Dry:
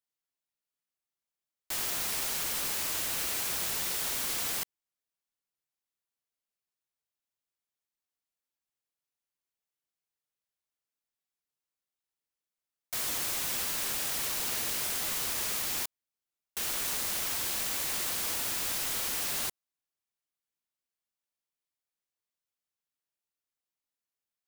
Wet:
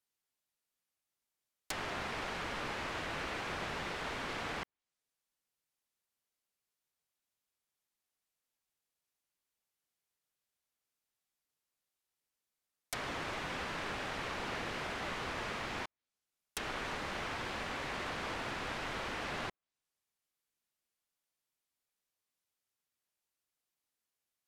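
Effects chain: treble ducked by the level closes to 2000 Hz, closed at -34 dBFS; gain +3 dB

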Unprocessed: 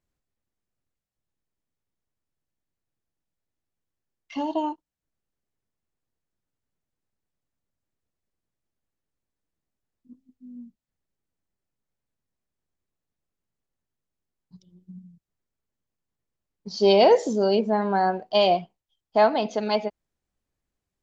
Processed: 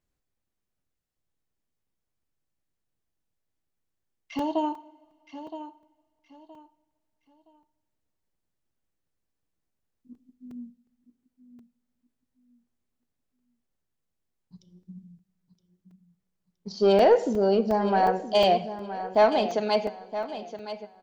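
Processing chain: 16.72–17.89 high shelf 2200 Hz -9 dB; soft clip -10.5 dBFS, distortion -21 dB; feedback echo 0.969 s, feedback 27%, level -12 dB; two-slope reverb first 0.74 s, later 2.8 s, from -18 dB, DRR 14 dB; crackling interface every 0.36 s, samples 128, zero, from 0.79

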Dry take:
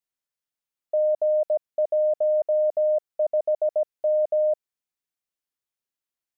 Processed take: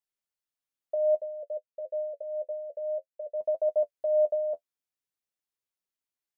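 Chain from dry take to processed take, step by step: 1.21–3.41 vowel filter e; flange 0.56 Hz, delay 9.2 ms, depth 3.1 ms, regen +32%

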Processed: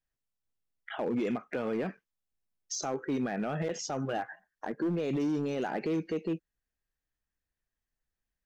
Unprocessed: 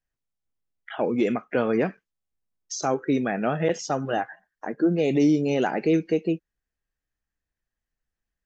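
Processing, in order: limiter -20 dBFS, peak gain reduction 8 dB; hard clip -22.5 dBFS, distortion -21 dB; gain -3 dB

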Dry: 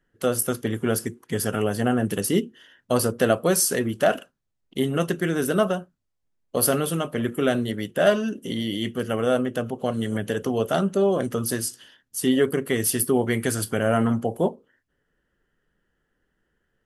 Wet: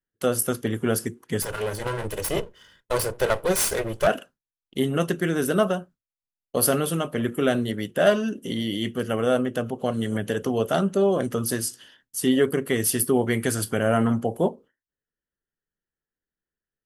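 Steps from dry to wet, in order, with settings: 1.42–4.07 minimum comb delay 2 ms; gate with hold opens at -46 dBFS

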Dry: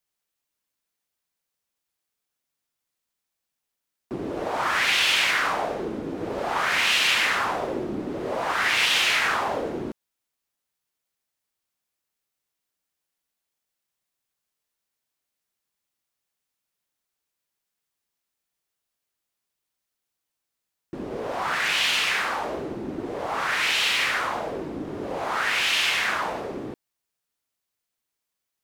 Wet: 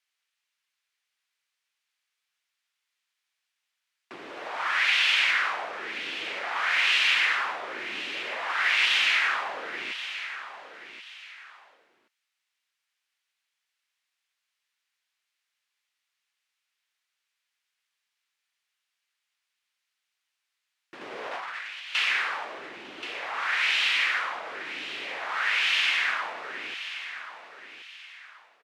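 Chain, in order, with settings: 21.01–21.95 negative-ratio compressor -30 dBFS, ratio -0.5; band-pass 2200 Hz, Q 1; feedback echo 1.08 s, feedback 16%, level -12 dB; mismatched tape noise reduction encoder only

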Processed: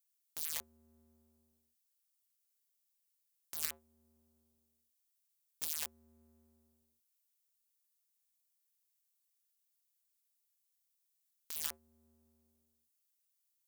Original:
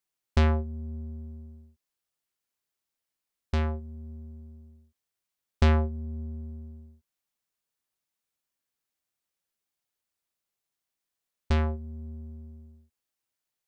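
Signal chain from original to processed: wrapped overs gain 26.5 dB; differentiator; gain +2.5 dB

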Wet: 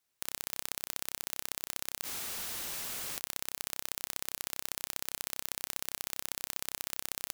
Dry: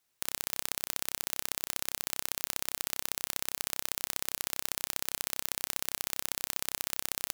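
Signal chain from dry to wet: spectral freeze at 2.06, 1.10 s; gain -3.5 dB

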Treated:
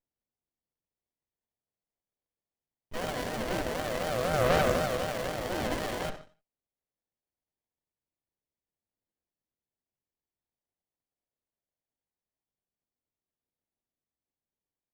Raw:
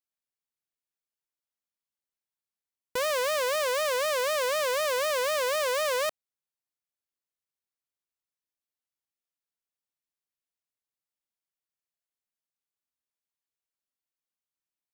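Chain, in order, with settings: phaser 0.22 Hz, delay 1.9 ms, feedback 66%; harmoniser +4 st -1 dB, +12 st -8 dB; on a send at -6 dB: reverb, pre-delay 59 ms; on the sum: running maximum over 33 samples; gain -4.5 dB

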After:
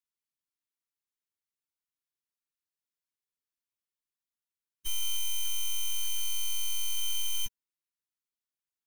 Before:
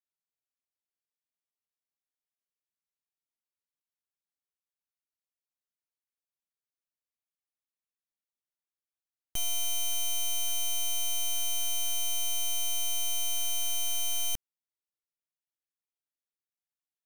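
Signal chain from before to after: plain phase-vocoder stretch 0.52×; elliptic band-stop 430–920 Hz, stop band 50 dB; gain +2 dB

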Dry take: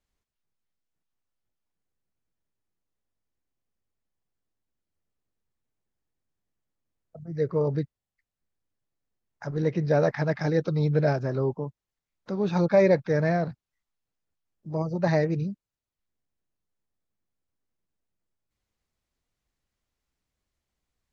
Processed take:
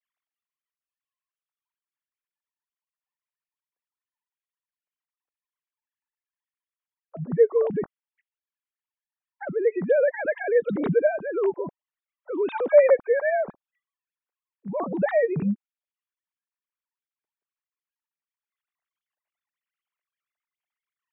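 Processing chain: sine-wave speech; in parallel at -1 dB: compressor, threshold -30 dBFS, peak gain reduction 18 dB

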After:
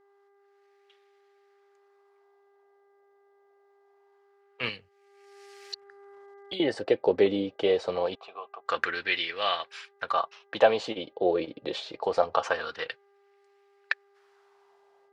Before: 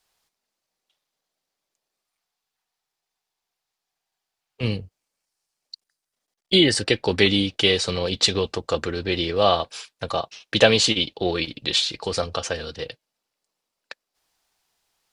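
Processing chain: AGC gain up to 15.5 dB; 8.15–8.66 vowel filter a; wah 0.24 Hz 530–2000 Hz, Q 2.1; buzz 400 Hz, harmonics 5, -64 dBFS -8 dB/oct; 4.69–6.6 three-band squash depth 100%

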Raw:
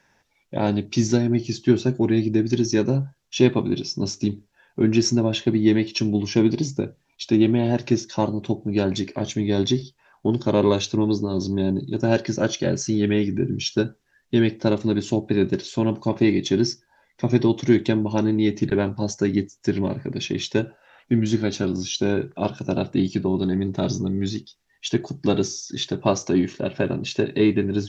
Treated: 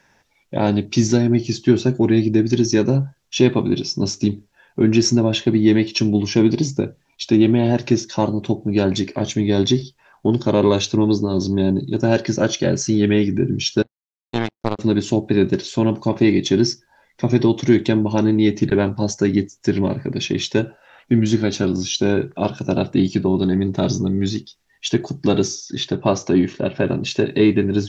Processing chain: 25.55–26.88 air absorption 78 m; in parallel at -1 dB: limiter -11 dBFS, peak gain reduction 8 dB; 13.82–14.79 on the sum: power-law curve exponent 3; gain -1 dB

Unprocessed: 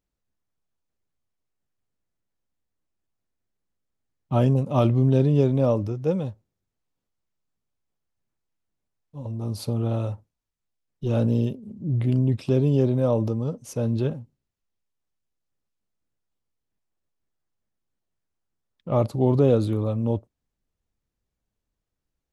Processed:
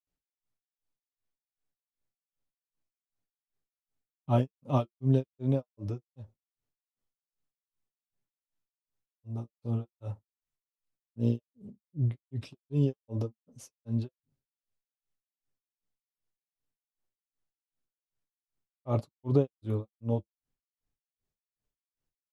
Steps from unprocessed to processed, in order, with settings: grains 0.246 s, grains 2.6/s, pitch spread up and down by 0 st; flange 1.2 Hz, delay 6.7 ms, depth 1.4 ms, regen -45%

